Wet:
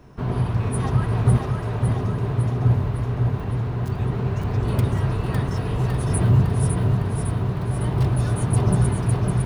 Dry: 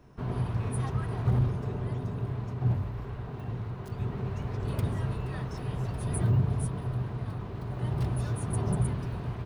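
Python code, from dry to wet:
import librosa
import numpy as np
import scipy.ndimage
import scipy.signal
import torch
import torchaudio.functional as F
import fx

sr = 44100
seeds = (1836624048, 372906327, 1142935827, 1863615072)

y = fx.highpass(x, sr, hz=460.0, slope=12, at=(1.37, 1.88))
y = fx.echo_feedback(y, sr, ms=556, feedback_pct=59, wet_db=-4.5)
y = y * librosa.db_to_amplitude(8.0)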